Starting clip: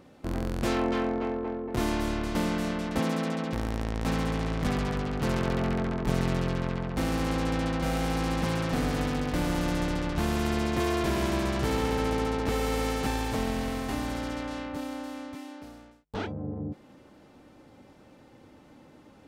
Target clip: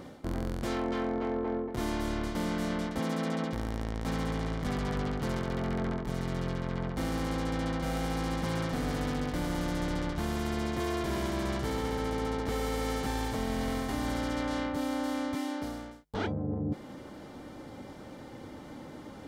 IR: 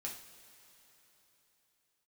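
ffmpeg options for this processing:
-af "bandreject=frequency=2600:width=10,areverse,acompressor=threshold=-37dB:ratio=12,areverse,volume=8.5dB"

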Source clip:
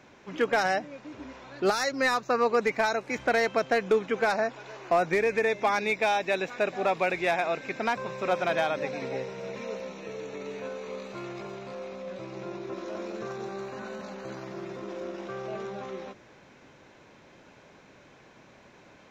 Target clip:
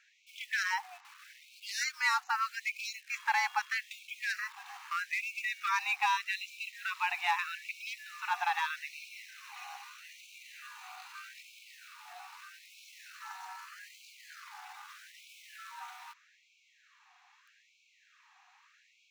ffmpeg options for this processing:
ffmpeg -i in.wav -filter_complex "[0:a]afreqshift=160,asplit=2[link_01][link_02];[link_02]acrusher=bits=6:mix=0:aa=0.000001,volume=-7dB[link_03];[link_01][link_03]amix=inputs=2:normalize=0,asettb=1/sr,asplit=3[link_04][link_05][link_06];[link_04]atrim=end=13.404[link_07];[link_05]atrim=start=13.4:end=13.94,asetpts=PTS-STARTPTS,afade=type=in:duration=0.004:curve=qsin,afade=type=out:start_time=0.536:duration=0.004:curve=qsin,bandreject=frequency=3900:width=13[link_08];[link_06]atrim=start=13.936[link_09];[link_07][link_08]acrossfade=duration=0.004:curve1=hsin:curve2=qsin[link_10];[link_10][link_09]acrossfade=duration=0.004:curve1=qsin:curve2=hsin,afftfilt=real='re*gte(b*sr/1024,690*pow(2200/690,0.5+0.5*sin(2*PI*0.8*pts/sr)))':imag='im*gte(b*sr/1024,690*pow(2200/690,0.5+0.5*sin(2*PI*0.8*pts/sr)))':win_size=1024:overlap=0.75,volume=-6dB" out.wav

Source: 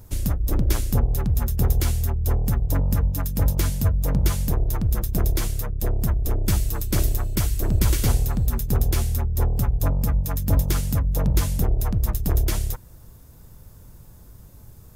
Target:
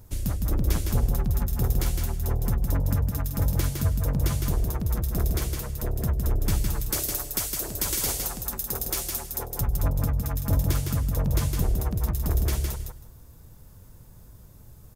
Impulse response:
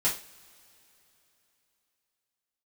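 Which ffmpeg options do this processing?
-filter_complex "[0:a]asettb=1/sr,asplit=3[link_01][link_02][link_03];[link_01]atrim=end=6.904[link_04];[link_02]atrim=start=6.9:end=9.61,asetpts=PTS-STARTPTS,afade=type=in:duration=0.004:curve=qsin,afade=type=out:start_time=2.706:duration=0.004:curve=qsin,bass=frequency=250:gain=-14,treble=frequency=4000:gain=7[link_05];[link_03]atrim=start=9.606[link_06];[link_04][link_05]acrossfade=duration=0.004:curve1=hsin:curve2=qsin[link_07];[link_07][link_06]acrossfade=duration=0.004:curve1=qsin:curve2=hsin,aecho=1:1:160|320|480:0.596|0.0953|0.0152,volume=-4dB"

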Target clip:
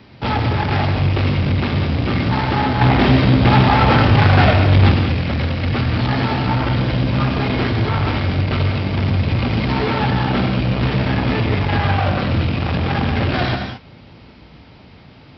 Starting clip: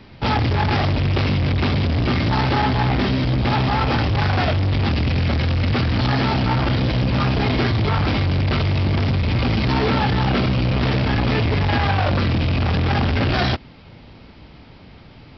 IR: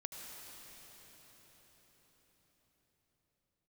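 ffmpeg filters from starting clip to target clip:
-filter_complex "[0:a]asettb=1/sr,asplit=3[link_01][link_02][link_03];[link_01]atrim=end=2.814[link_04];[link_02]atrim=start=2.81:end=4.94,asetpts=PTS-STARTPTS,afade=type=in:duration=0.004:curve=qsin,afade=type=out:start_time=2.126:duration=0.004:curve=qsin,acontrast=60[link_05];[link_03]atrim=start=4.936[link_06];[link_04][link_05]acrossfade=duration=0.004:curve1=hsin:curve2=qsin[link_07];[link_07][link_06]acrossfade=duration=0.004:curve1=qsin:curve2=hsin,highpass=58[link_08];[1:a]atrim=start_sample=2205,afade=type=out:start_time=0.28:duration=0.01,atrim=end_sample=12789[link_09];[link_08][link_09]afir=irnorm=-1:irlink=0,acrossover=split=4600[link_10][link_11];[link_11]acompressor=threshold=-52dB:ratio=4:attack=1:release=60[link_12];[link_10][link_12]amix=inputs=2:normalize=0,volume=4.5dB"

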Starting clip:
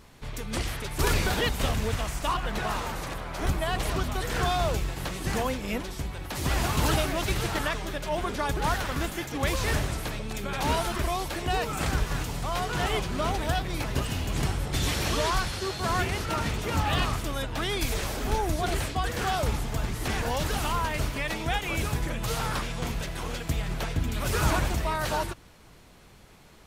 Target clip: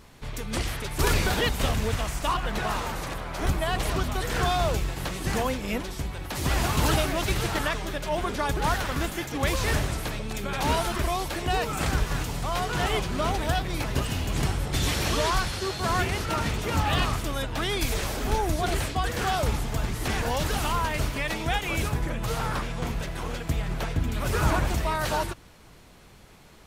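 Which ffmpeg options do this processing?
ffmpeg -i in.wav -filter_complex "[0:a]asplit=3[link_01][link_02][link_03];[link_01]afade=type=out:start_time=21.88:duration=0.02[link_04];[link_02]adynamicequalizer=threshold=0.00631:dfrequency=2300:dqfactor=0.7:tfrequency=2300:tqfactor=0.7:attack=5:release=100:ratio=0.375:range=3:mode=cutabove:tftype=highshelf,afade=type=in:start_time=21.88:duration=0.02,afade=type=out:start_time=24.67:duration=0.02[link_05];[link_03]afade=type=in:start_time=24.67:duration=0.02[link_06];[link_04][link_05][link_06]amix=inputs=3:normalize=0,volume=1.5dB" out.wav

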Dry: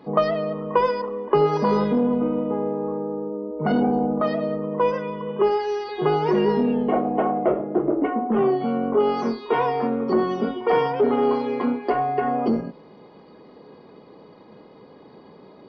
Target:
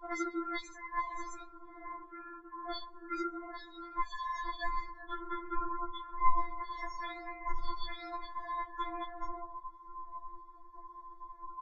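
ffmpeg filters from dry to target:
ffmpeg -i in.wav -filter_complex "[0:a]aeval=exprs='val(0)*sin(2*PI*380*n/s)':channel_layout=same,lowshelf=frequency=490:gain=4.5,asetrate=59535,aresample=44100,aecho=1:1:136|272|408:0.168|0.0537|0.0172,acrossover=split=230|3000[link_01][link_02][link_03];[link_02]acompressor=threshold=-29dB:ratio=3[link_04];[link_01][link_04][link_03]amix=inputs=3:normalize=0,equalizer=frequency=100:width_type=o:width=0.67:gain=6,equalizer=frequency=1000:width_type=o:width=0.67:gain=5,equalizer=frequency=2500:width_type=o:width=0.67:gain=11,acrossover=split=2500[link_05][link_06];[link_05]alimiter=limit=-22.5dB:level=0:latency=1:release=166[link_07];[link_07][link_06]amix=inputs=2:normalize=0,asuperstop=centerf=2800:order=20:qfactor=2.7,afftdn=noise_reduction=28:noise_floor=-38,acompressor=threshold=-32dB:ratio=3,flanger=delay=4.7:depth=7.3:regen=-52:speed=1.2:shape=sinusoidal,afftfilt=real='re*4*eq(mod(b,16),0)':imag='im*4*eq(mod(b,16),0)':win_size=2048:overlap=0.75,volume=8dB" out.wav

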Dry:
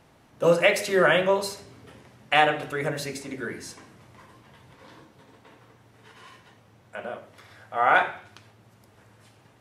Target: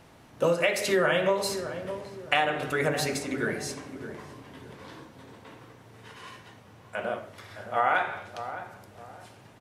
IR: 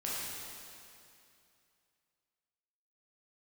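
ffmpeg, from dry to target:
-filter_complex "[0:a]bandreject=frequency=71.71:width_type=h:width=4,bandreject=frequency=143.42:width_type=h:width=4,bandreject=frequency=215.13:width_type=h:width=4,bandreject=frequency=286.84:width_type=h:width=4,bandreject=frequency=358.55:width_type=h:width=4,bandreject=frequency=430.26:width_type=h:width=4,bandreject=frequency=501.97:width_type=h:width=4,bandreject=frequency=573.68:width_type=h:width=4,bandreject=frequency=645.39:width_type=h:width=4,bandreject=frequency=717.1:width_type=h:width=4,bandreject=frequency=788.81:width_type=h:width=4,bandreject=frequency=860.52:width_type=h:width=4,bandreject=frequency=932.23:width_type=h:width=4,bandreject=frequency=1003.94:width_type=h:width=4,bandreject=frequency=1075.65:width_type=h:width=4,bandreject=frequency=1147.36:width_type=h:width=4,bandreject=frequency=1219.07:width_type=h:width=4,bandreject=frequency=1290.78:width_type=h:width=4,bandreject=frequency=1362.49:width_type=h:width=4,bandreject=frequency=1434.2:width_type=h:width=4,bandreject=frequency=1505.91:width_type=h:width=4,bandreject=frequency=1577.62:width_type=h:width=4,bandreject=frequency=1649.33:width_type=h:width=4,bandreject=frequency=1721.04:width_type=h:width=4,bandreject=frequency=1792.75:width_type=h:width=4,bandreject=frequency=1864.46:width_type=h:width=4,bandreject=frequency=1936.17:width_type=h:width=4,bandreject=frequency=2007.88:width_type=h:width=4,bandreject=frequency=2079.59:width_type=h:width=4,bandreject=frequency=2151.3:width_type=h:width=4,bandreject=frequency=2223.01:width_type=h:width=4,acompressor=threshold=-25dB:ratio=6,asplit=2[link_01][link_02];[link_02]adelay=614,lowpass=frequency=870:poles=1,volume=-9dB,asplit=2[link_03][link_04];[link_04]adelay=614,lowpass=frequency=870:poles=1,volume=0.4,asplit=2[link_05][link_06];[link_06]adelay=614,lowpass=frequency=870:poles=1,volume=0.4,asplit=2[link_07][link_08];[link_08]adelay=614,lowpass=frequency=870:poles=1,volume=0.4[link_09];[link_01][link_03][link_05][link_07][link_09]amix=inputs=5:normalize=0,volume=4dB"

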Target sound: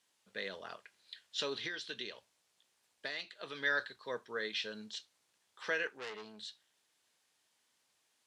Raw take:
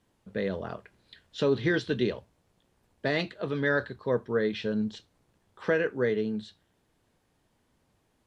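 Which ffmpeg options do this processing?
ffmpeg -i in.wav -filter_complex "[0:a]asettb=1/sr,asplit=3[link_01][link_02][link_03];[link_01]atrim=end=5.874[link_04];[link_02]atrim=start=5.87:end=6.4,asetpts=PTS-STARTPTS,afade=type=in:duration=0.004:curve=qsin,afade=type=out:start_time=0.526:duration=0.004:curve=qsin,aeval=exprs='(tanh(28.2*val(0)+0.5)-tanh(0.5))/28.2':channel_layout=same[link_05];[link_03]atrim=start=6.396[link_06];[link_04][link_05]acrossfade=duration=0.004:curve1=hsin:curve2=qsin[link_07];[link_07][link_06]acrossfade=duration=0.004:curve1=qsin:curve2=hsin,bandpass=frequency=6300:width_type=q:width=0.59:csg=0,asettb=1/sr,asplit=3[link_08][link_09][link_10];[link_08]atrim=end=1.654[link_11];[link_09]atrim=start=1.65:end=3.63,asetpts=PTS-STARTPTS,afade=type=in:duration=0.004:curve=qsin,afade=type=out:start_time=1.976:duration=0.004:curve=qsin,acompressor=threshold=-43dB:ratio=6[link_12];[link_10]atrim=start=3.626[link_13];[link_11][link_12]acrossfade=duration=0.004:curve1=hsin:curve2=qsin[link_14];[link_14][link_13]acrossfade=duration=0.004:curve1=qsin:curve2=hsin,volume=4.5dB" out.wav

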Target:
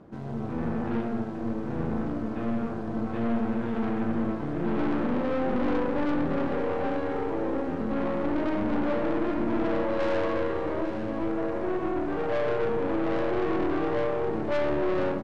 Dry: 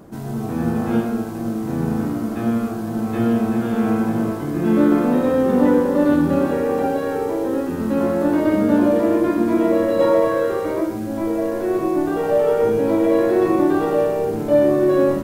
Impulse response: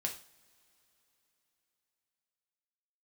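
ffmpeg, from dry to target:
-af "lowpass=3300,aeval=exprs='(tanh(11.2*val(0)+0.7)-tanh(0.7))/11.2':channel_layout=same,aecho=1:1:848:0.299,volume=-3.5dB"

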